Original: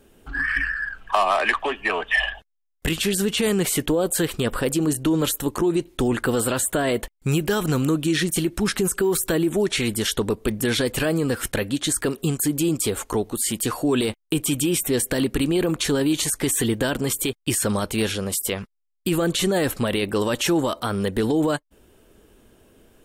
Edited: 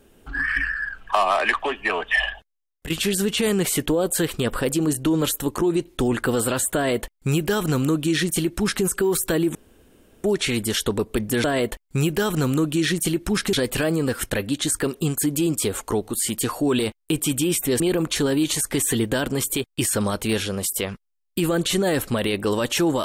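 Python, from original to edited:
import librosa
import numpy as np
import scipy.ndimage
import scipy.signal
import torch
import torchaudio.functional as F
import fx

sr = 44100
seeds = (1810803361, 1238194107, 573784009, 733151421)

y = fx.edit(x, sr, fx.fade_out_to(start_s=2.26, length_s=0.64, floor_db=-11.5),
    fx.duplicate(start_s=6.75, length_s=2.09, to_s=10.75),
    fx.insert_room_tone(at_s=9.55, length_s=0.69),
    fx.cut(start_s=15.02, length_s=0.47), tone=tone)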